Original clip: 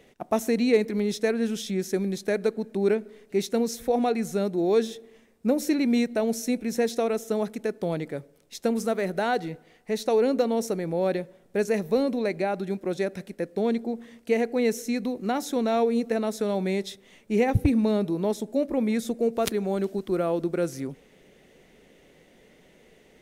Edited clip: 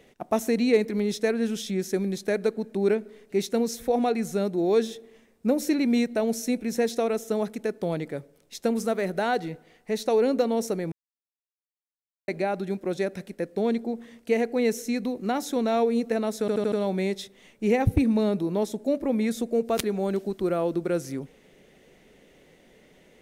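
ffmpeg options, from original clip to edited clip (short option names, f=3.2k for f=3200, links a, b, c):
-filter_complex "[0:a]asplit=7[a][b][c][d][e][f][g];[a]atrim=end=10.92,asetpts=PTS-STARTPTS,afade=t=out:st=10.916:d=0.004:c=hsin[h];[b]atrim=start=10.92:end=12.28,asetpts=PTS-STARTPTS,volume=0[i];[c]atrim=start=12.28:end=16.482,asetpts=PTS-STARTPTS,afade=t=in:d=0.004:c=hsin[j];[d]atrim=start=16.398:end=16.482[k];[e]atrim=start=16.398:end=16.482[l];[f]atrim=start=16.398:end=16.482[m];[g]atrim=start=16.398[n];[h][i][j]concat=n=3:v=0:a=1[o];[o][k]acrossfade=d=0.004:c1=hsin:c2=hsin[p];[p][l]acrossfade=d=0.004:c1=hsin:c2=hsin[q];[q][m]acrossfade=d=0.004:c1=hsin:c2=hsin[r];[r][n]acrossfade=d=0.004:c1=hsin:c2=hsin"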